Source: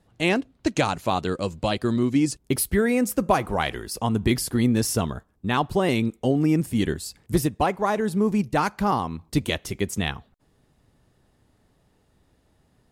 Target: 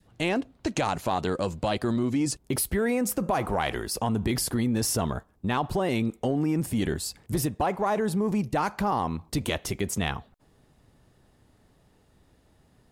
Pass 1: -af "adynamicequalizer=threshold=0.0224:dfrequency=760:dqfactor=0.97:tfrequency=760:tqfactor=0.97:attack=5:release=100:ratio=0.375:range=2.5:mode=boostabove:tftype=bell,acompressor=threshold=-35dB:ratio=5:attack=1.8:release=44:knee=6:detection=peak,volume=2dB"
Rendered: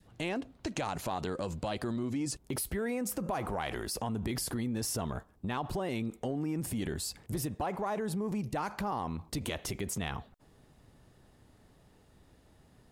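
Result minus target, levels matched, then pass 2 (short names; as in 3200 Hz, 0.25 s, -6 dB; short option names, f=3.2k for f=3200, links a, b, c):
compressor: peak gain reduction +8.5 dB
-af "adynamicequalizer=threshold=0.0224:dfrequency=760:dqfactor=0.97:tfrequency=760:tqfactor=0.97:attack=5:release=100:ratio=0.375:range=2.5:mode=boostabove:tftype=bell,acompressor=threshold=-24.5dB:ratio=5:attack=1.8:release=44:knee=6:detection=peak,volume=2dB"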